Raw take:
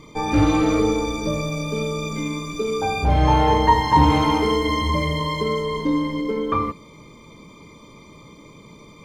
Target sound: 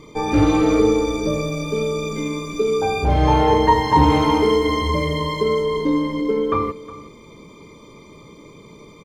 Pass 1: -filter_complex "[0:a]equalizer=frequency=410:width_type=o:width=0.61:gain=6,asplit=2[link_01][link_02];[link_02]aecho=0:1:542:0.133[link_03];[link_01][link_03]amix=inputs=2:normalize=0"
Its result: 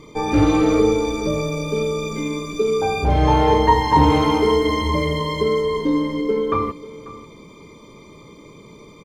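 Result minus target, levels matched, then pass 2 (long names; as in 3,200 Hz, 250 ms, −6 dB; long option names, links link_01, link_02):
echo 179 ms late
-filter_complex "[0:a]equalizer=frequency=410:width_type=o:width=0.61:gain=6,asplit=2[link_01][link_02];[link_02]aecho=0:1:363:0.133[link_03];[link_01][link_03]amix=inputs=2:normalize=0"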